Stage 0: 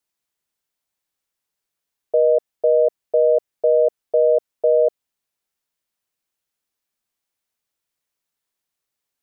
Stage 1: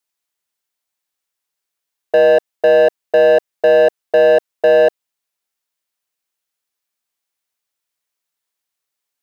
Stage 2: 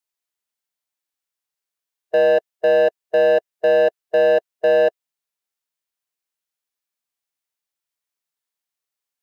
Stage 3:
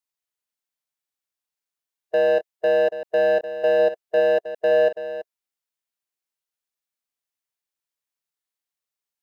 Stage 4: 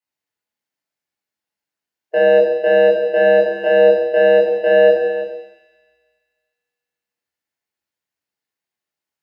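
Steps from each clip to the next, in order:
low-shelf EQ 420 Hz −8.5 dB; leveller curve on the samples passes 2; level +6 dB
harmonic and percussive parts rebalanced percussive −4 dB; level −4.5 dB
delay that plays each chunk backwards 379 ms, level −12 dB; level −3.5 dB
delay with a high-pass on its return 75 ms, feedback 80%, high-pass 3,100 Hz, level −12 dB; convolution reverb RT60 0.90 s, pre-delay 20 ms, DRR −3 dB; level −6 dB

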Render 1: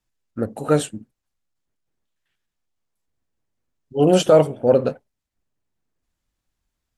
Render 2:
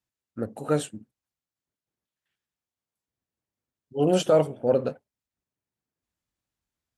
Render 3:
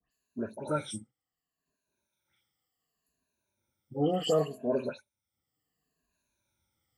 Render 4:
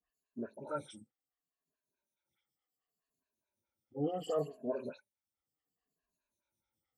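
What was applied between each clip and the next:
high-pass filter 71 Hz; level −6.5 dB
rippled gain that drifts along the octave scale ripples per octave 1.5, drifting −0.69 Hz, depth 20 dB; all-pass dispersion highs, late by 116 ms, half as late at 2,500 Hz; multiband upward and downward compressor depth 40%; level −8.5 dB
phaser with staggered stages 4.7 Hz; level −5.5 dB

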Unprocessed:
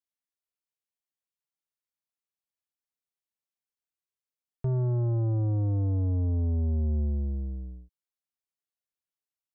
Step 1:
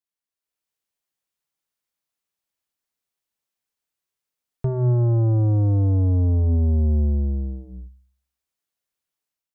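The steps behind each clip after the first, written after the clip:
hum removal 64.2 Hz, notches 4
automatic gain control gain up to 8 dB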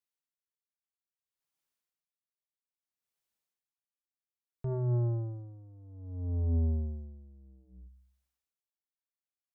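brickwall limiter −22 dBFS, peak gain reduction 9 dB
tremolo with a sine in dB 0.61 Hz, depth 26 dB
level −2.5 dB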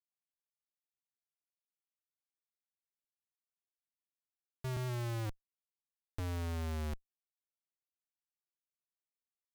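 comparator with hysteresis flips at −36 dBFS
level +1 dB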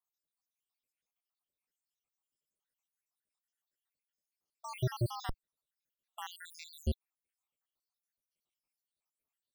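time-frequency cells dropped at random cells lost 81%
level +9.5 dB

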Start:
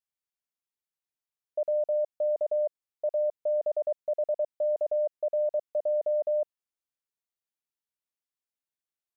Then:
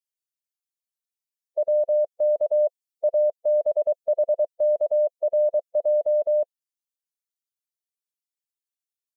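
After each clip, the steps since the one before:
spectral dynamics exaggerated over time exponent 2
in parallel at +2 dB: speech leveller 0.5 s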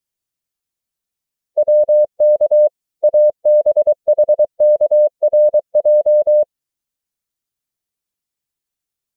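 low-shelf EQ 290 Hz +10.5 dB
level +7.5 dB

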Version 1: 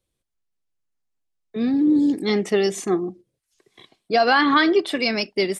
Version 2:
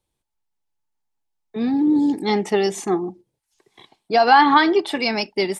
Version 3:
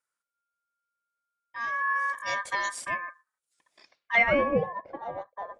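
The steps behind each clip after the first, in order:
parametric band 870 Hz +15 dB 0.24 octaves; notch filter 530 Hz, Q 15
ring modulation 1,400 Hz; low-pass filter sweep 9,300 Hz → 610 Hz, 0:03.74–0:04.58; harmonic generator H 2 −30 dB, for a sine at −3 dBFS; level −8 dB

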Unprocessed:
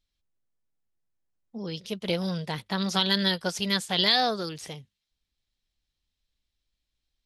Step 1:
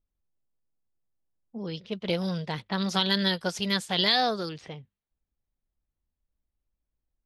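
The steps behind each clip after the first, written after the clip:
low-pass that shuts in the quiet parts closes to 990 Hz, open at −25.5 dBFS
high-shelf EQ 5,400 Hz −4.5 dB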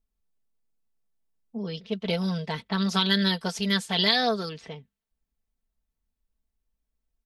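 comb filter 4.5 ms, depth 60%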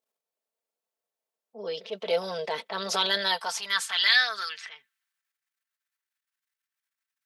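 transient designer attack −6 dB, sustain +6 dB
high-pass filter sweep 540 Hz → 1,600 Hz, 0:02.98–0:04.09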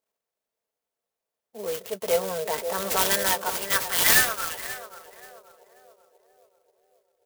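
feedback echo with a band-pass in the loop 534 ms, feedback 58%, band-pass 460 Hz, level −8 dB
converter with an unsteady clock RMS 0.075 ms
level +3 dB

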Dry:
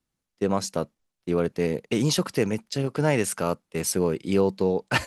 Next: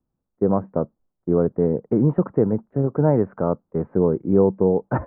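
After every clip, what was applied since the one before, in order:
Bessel low-pass filter 770 Hz, order 8
level +6 dB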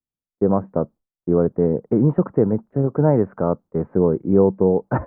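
noise gate with hold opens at −54 dBFS
level +1.5 dB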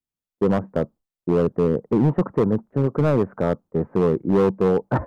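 hard clipping −12.5 dBFS, distortion −12 dB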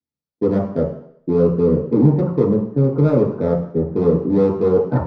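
convolution reverb RT60 0.65 s, pre-delay 3 ms, DRR −3.5 dB
level −12.5 dB

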